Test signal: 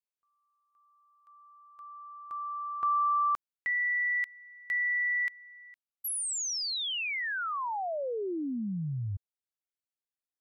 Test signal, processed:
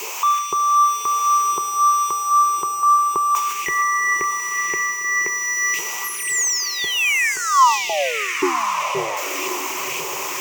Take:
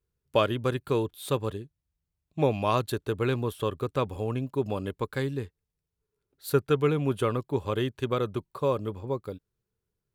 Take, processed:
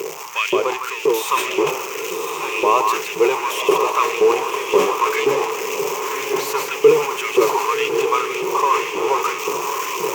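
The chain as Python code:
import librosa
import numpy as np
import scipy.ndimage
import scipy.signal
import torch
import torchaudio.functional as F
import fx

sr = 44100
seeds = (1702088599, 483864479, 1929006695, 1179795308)

p1 = x + 0.5 * 10.0 ** (-25.0 / 20.0) * np.sign(x)
p2 = scipy.signal.sosfilt(scipy.signal.butter(2, 110.0, 'highpass', fs=sr, output='sos'), p1)
p3 = fx.high_shelf(p2, sr, hz=11000.0, db=-7.5)
p4 = fx.rider(p3, sr, range_db=3, speed_s=0.5)
p5 = p4 + 10.0 ** (-7.0 / 20.0) * np.pad(p4, (int(158 * sr / 1000.0), 0))[:len(p4)]
p6 = fx.filter_lfo_highpass(p5, sr, shape='saw_up', hz=1.9, low_hz=370.0, high_hz=2800.0, q=2.3)
p7 = fx.ripple_eq(p6, sr, per_octave=0.75, db=13)
p8 = p7 + fx.echo_diffused(p7, sr, ms=1085, feedback_pct=40, wet_db=-6.0, dry=0)
p9 = fx.sustainer(p8, sr, db_per_s=88.0)
y = p9 * 10.0 ** (3.5 / 20.0)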